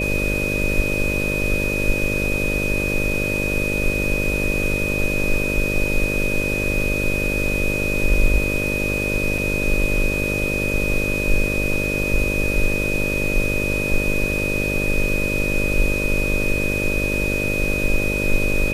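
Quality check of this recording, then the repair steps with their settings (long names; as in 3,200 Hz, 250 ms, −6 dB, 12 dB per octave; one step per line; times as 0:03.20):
mains buzz 50 Hz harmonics 12 −25 dBFS
whistle 2,500 Hz −23 dBFS
0:09.38: drop-out 3.2 ms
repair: hum removal 50 Hz, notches 12
notch filter 2,500 Hz, Q 30
repair the gap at 0:09.38, 3.2 ms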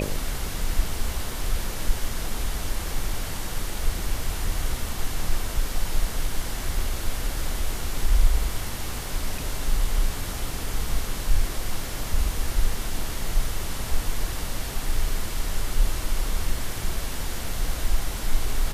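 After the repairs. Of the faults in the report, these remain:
none of them is left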